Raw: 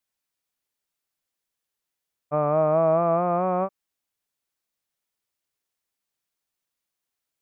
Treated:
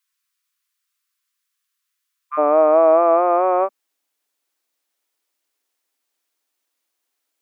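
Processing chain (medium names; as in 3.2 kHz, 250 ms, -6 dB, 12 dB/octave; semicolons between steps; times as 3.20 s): brick-wall FIR high-pass 1 kHz, from 2.37 s 230 Hz; trim +7.5 dB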